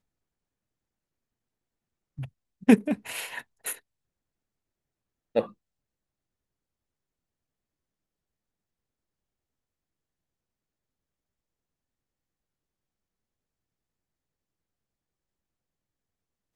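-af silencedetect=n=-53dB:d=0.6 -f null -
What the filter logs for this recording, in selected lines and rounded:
silence_start: 0.00
silence_end: 2.18 | silence_duration: 2.18
silence_start: 3.80
silence_end: 5.35 | silence_duration: 1.56
silence_start: 5.53
silence_end: 16.55 | silence_duration: 11.02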